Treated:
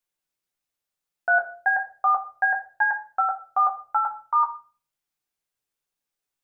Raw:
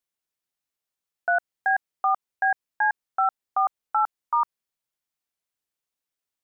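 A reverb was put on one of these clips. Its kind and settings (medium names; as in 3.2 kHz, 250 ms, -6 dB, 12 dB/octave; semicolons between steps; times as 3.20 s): simulated room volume 31 m³, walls mixed, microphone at 0.38 m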